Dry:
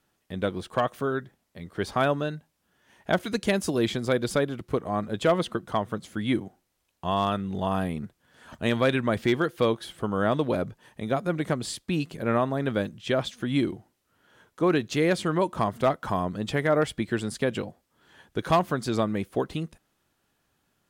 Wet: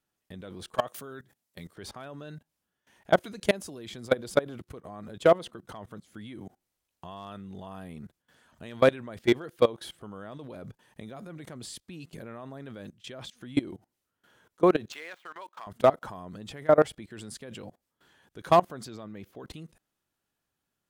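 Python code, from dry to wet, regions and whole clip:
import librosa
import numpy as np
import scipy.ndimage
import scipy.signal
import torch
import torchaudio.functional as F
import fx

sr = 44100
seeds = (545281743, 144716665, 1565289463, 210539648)

y = fx.chain(x, sr, fx.highpass(hz=79.0, slope=12),
    fx.high_shelf(hz=3900.0, db=8.5), at=(0.75, 1.76))
y = fx.chain(y, sr, fx.median_filter(points=9),
    fx.highpass(hz=1100.0, slope=12),
    fx.peak_eq(hz=10000.0, db=-8.5, octaves=1.3), at=(14.92, 15.67))
y = fx.chain(y, sr, fx.highpass(hz=56.0, slope=12),
    fx.peak_eq(hz=9400.0, db=-13.0, octaves=0.54), at=(18.85, 19.44))
y = fx.high_shelf(y, sr, hz=4800.0, db=4.0)
y = fx.level_steps(y, sr, step_db=21)
y = fx.dynamic_eq(y, sr, hz=610.0, q=0.72, threshold_db=-39.0, ratio=4.0, max_db=6)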